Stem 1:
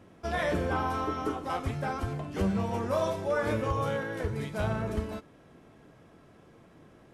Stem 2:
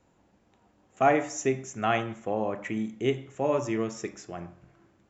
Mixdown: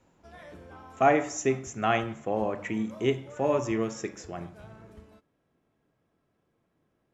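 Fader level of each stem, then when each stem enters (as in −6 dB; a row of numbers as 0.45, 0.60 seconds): −18.5, +0.5 decibels; 0.00, 0.00 seconds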